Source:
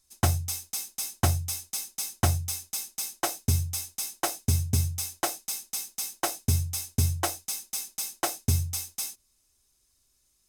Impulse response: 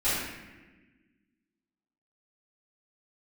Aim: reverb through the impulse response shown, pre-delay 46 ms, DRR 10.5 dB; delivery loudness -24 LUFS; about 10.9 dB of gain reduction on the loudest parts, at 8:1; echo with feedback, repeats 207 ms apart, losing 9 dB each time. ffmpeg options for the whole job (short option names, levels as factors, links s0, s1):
-filter_complex "[0:a]acompressor=threshold=0.0282:ratio=8,aecho=1:1:207|414|621|828:0.355|0.124|0.0435|0.0152,asplit=2[s0][s1];[1:a]atrim=start_sample=2205,adelay=46[s2];[s1][s2]afir=irnorm=-1:irlink=0,volume=0.075[s3];[s0][s3]amix=inputs=2:normalize=0,volume=3.55"